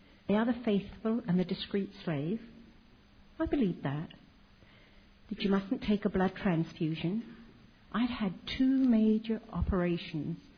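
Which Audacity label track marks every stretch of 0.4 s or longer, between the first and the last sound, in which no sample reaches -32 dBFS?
2.360000	3.400000	silence
4.020000	5.320000	silence
7.190000	7.940000	silence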